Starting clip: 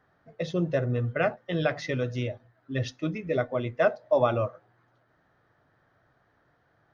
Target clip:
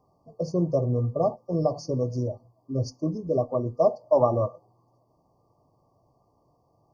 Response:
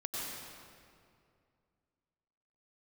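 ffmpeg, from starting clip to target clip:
-af "afftfilt=real='re*(1-between(b*sr/4096,1200,4400))':imag='im*(1-between(b*sr/4096,1200,4400))':win_size=4096:overlap=0.75,volume=2.5dB"

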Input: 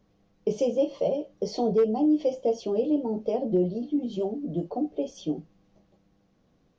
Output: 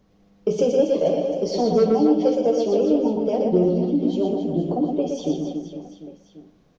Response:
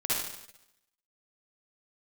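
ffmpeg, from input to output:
-filter_complex "[0:a]acontrast=77,aecho=1:1:120|276|478.8|742.4|1085:0.631|0.398|0.251|0.158|0.1,asplit=2[link_01][link_02];[1:a]atrim=start_sample=2205,asetrate=61740,aresample=44100[link_03];[link_02][link_03]afir=irnorm=-1:irlink=0,volume=-15dB[link_04];[link_01][link_04]amix=inputs=2:normalize=0,volume=-3dB"

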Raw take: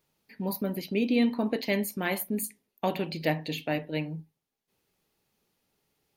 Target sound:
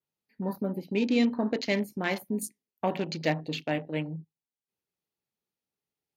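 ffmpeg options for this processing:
ffmpeg -i in.wav -af "highpass=59,afwtdn=0.00891,adynamicequalizer=threshold=0.00251:dfrequency=5500:dqfactor=1.4:tfrequency=5500:tqfactor=1.4:attack=5:release=100:ratio=0.375:range=2.5:mode=boostabove:tftype=bell" out.wav

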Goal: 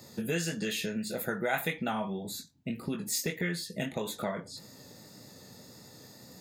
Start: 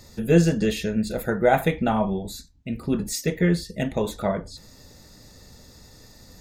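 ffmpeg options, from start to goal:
ffmpeg -i in.wav -filter_complex "[0:a]highpass=frequency=120:width=0.5412,highpass=frequency=120:width=1.3066,highshelf=frequency=11000:gain=7,bandreject=frequency=5800:width=15,acrossover=split=1200[link_01][link_02];[link_01]acompressor=threshold=-32dB:ratio=6[link_03];[link_02]flanger=delay=17.5:depth=7.5:speed=1.7[link_04];[link_03][link_04]amix=inputs=2:normalize=0" out.wav

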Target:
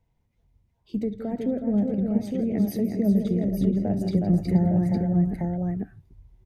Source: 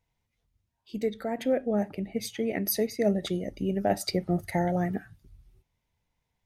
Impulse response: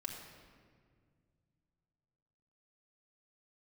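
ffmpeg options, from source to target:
-filter_complex "[0:a]tiltshelf=frequency=970:gain=7,aecho=1:1:67|165|366|479|859:0.126|0.237|0.562|0.211|0.501,acrossover=split=240[link_01][link_02];[link_02]acompressor=threshold=-38dB:ratio=3[link_03];[link_01][link_03]amix=inputs=2:normalize=0,volume=2.5dB"

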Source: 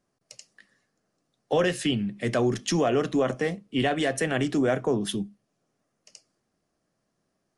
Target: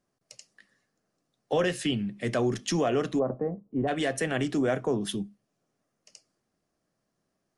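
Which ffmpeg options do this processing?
ffmpeg -i in.wav -filter_complex "[0:a]asplit=3[link_01][link_02][link_03];[link_01]afade=type=out:start_time=3.18:duration=0.02[link_04];[link_02]lowpass=frequency=1000:width=0.5412,lowpass=frequency=1000:width=1.3066,afade=type=in:start_time=3.18:duration=0.02,afade=type=out:start_time=3.87:duration=0.02[link_05];[link_03]afade=type=in:start_time=3.87:duration=0.02[link_06];[link_04][link_05][link_06]amix=inputs=3:normalize=0,volume=-2.5dB" out.wav

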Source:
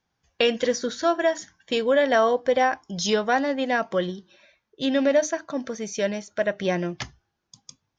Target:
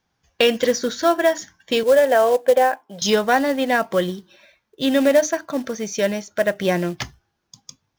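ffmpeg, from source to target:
ffmpeg -i in.wav -filter_complex "[0:a]asettb=1/sr,asplit=3[link_01][link_02][link_03];[link_01]atrim=end=1.834[link_04];[link_02]atrim=start=1.83:end=3.02,asetpts=PTS-STARTPTS,afade=type=in:duration=0.004:curve=qsin,afade=type=out:start_time=1.186:duration=0.004:curve=qsin,highpass=340,equalizer=frequency=350:width_type=q:width=4:gain=-8,equalizer=frequency=520:width_type=q:width=4:gain=4,equalizer=frequency=1200:width_type=q:width=4:gain=-9,equalizer=frequency=2100:width_type=q:width=4:gain=-8,lowpass=frequency=2700:width=0.5412,lowpass=frequency=2700:width=1.3066[link_05];[link_03]atrim=start=3.016[link_06];[link_04][link_05]acrossfade=duration=0.004:curve1=hsin:curve2=qsin[link_07];[link_07][link_06]acrossfade=duration=0.004:curve1=qsin:curve2=hsin,acrusher=bits=5:mode=log:mix=0:aa=0.000001,volume=4.5dB" out.wav

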